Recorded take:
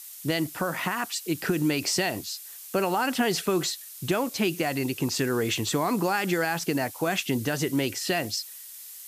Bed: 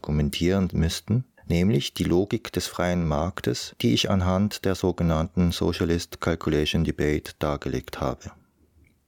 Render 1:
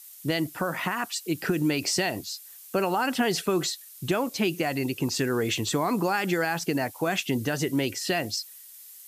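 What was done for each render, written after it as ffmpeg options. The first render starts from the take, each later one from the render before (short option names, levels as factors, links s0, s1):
-af "afftdn=nr=6:nf=-43"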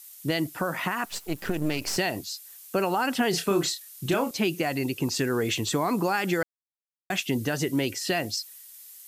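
-filter_complex "[0:a]asettb=1/sr,asplit=3[s0][s1][s2];[s0]atrim=end=1.054[s3];[s1]atrim=start=1.05:end=1.97,asetpts=PTS-STARTPTS,afade=t=in:d=0.004:c=qsin,afade=t=out:st=0.916:d=0.004:c=qsin,aeval=exprs='if(lt(val(0),0),0.251*val(0),val(0))':c=same[s4];[s2]atrim=start=1.966[s5];[s3][s4]acrossfade=d=0.004:c1=hsin:c2=qsin[s6];[s6][s5]acrossfade=d=0.004:c1=qsin:c2=hsin,asettb=1/sr,asplit=3[s7][s8][s9];[s7]atrim=end=3.304[s10];[s8]atrim=start=3.3:end=4.31,asetpts=PTS-STARTPTS,afade=t=in:d=0.004:c=qsin,afade=t=out:st=1.006:d=0.004:c=qsin,asplit=2[s11][s12];[s12]adelay=30,volume=0.501[s13];[s11][s13]amix=inputs=2:normalize=0,atrim=end_sample=44541[s14];[s9]atrim=start=4.306[s15];[s10][s14]acrossfade=d=0.004:c1=hsin:c2=qsin[s16];[s16][s15]acrossfade=d=0.004:c1=qsin:c2=hsin,asplit=3[s17][s18][s19];[s17]atrim=end=6.43,asetpts=PTS-STARTPTS,afade=t=out:st=6.426:d=0.004:c=hsin[s20];[s18]atrim=start=6.43:end=7.1,asetpts=PTS-STARTPTS,volume=0[s21];[s19]atrim=start=7.1,asetpts=PTS-STARTPTS,afade=t=in:d=0.004:c=hsin[s22];[s20][s21][s22]concat=n=3:v=0:a=1"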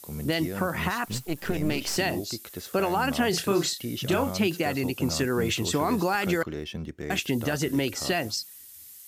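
-filter_complex "[1:a]volume=0.251[s0];[0:a][s0]amix=inputs=2:normalize=0"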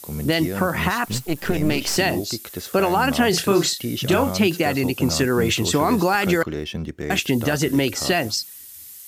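-af "volume=2.11"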